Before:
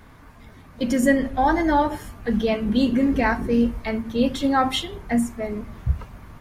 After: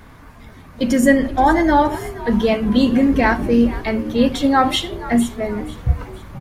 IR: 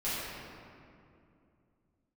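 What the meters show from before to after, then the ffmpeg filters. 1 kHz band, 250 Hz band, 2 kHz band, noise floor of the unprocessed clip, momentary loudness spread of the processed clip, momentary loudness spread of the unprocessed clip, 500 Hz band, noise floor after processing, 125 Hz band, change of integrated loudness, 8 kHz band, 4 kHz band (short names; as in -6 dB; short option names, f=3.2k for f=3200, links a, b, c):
+5.0 dB, +5.0 dB, +5.0 dB, -47 dBFS, 10 LU, 10 LU, +5.5 dB, -42 dBFS, +5.0 dB, +5.0 dB, n/a, +5.0 dB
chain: -filter_complex "[0:a]asplit=5[a][b][c][d][e];[b]adelay=474,afreqshift=70,volume=-17dB[f];[c]adelay=948,afreqshift=140,volume=-23.7dB[g];[d]adelay=1422,afreqshift=210,volume=-30.5dB[h];[e]adelay=1896,afreqshift=280,volume=-37.2dB[i];[a][f][g][h][i]amix=inputs=5:normalize=0,volume=5dB"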